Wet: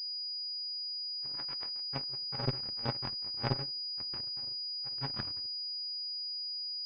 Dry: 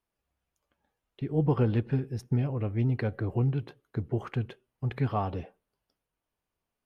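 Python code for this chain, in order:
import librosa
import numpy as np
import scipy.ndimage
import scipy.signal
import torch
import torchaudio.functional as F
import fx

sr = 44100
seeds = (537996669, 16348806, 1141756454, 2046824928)

y = fx.bit_reversed(x, sr, seeds[0], block=64)
y = fx.highpass(y, sr, hz=1200.0, slope=6, at=(1.35, 1.9))
y = fx.room_shoebox(y, sr, seeds[1], volume_m3=320.0, walls='furnished', distance_m=3.6)
y = fx.cheby_harmonics(y, sr, harmonics=(2, 3, 4, 5), levels_db=(-7, -9, -18, -40), full_scale_db=-7.5)
y = fx.pwm(y, sr, carrier_hz=4900.0)
y = F.gain(torch.from_numpy(y), -7.0).numpy()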